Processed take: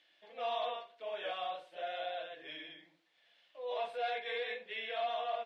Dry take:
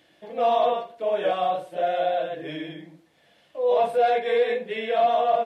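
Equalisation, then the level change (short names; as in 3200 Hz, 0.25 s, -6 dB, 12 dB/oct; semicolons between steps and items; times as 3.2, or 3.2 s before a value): band-pass 3700 Hz, Q 1.1; high shelf 3400 Hz -11 dB; 0.0 dB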